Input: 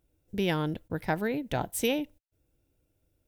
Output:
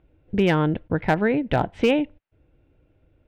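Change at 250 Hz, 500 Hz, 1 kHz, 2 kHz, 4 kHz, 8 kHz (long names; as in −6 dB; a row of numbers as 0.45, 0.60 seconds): +9.0 dB, +9.0 dB, +8.5 dB, +8.0 dB, +3.0 dB, below −10 dB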